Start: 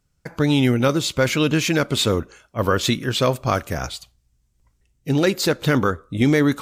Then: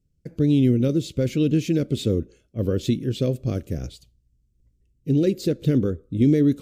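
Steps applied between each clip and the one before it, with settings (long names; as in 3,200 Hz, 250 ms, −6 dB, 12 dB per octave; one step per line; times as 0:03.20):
drawn EQ curve 340 Hz 0 dB, 510 Hz −5 dB, 930 Hz −29 dB, 2,800 Hz −13 dB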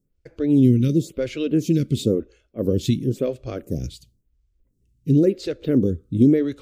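phaser with staggered stages 0.96 Hz
level +4 dB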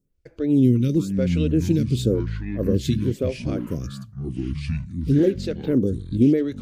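delay with pitch and tempo change per echo 367 ms, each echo −7 semitones, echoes 2, each echo −6 dB
level −1.5 dB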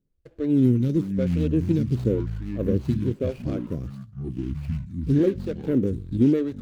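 running median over 25 samples
level −2 dB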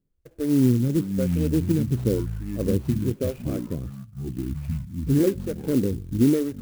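converter with an unsteady clock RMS 0.048 ms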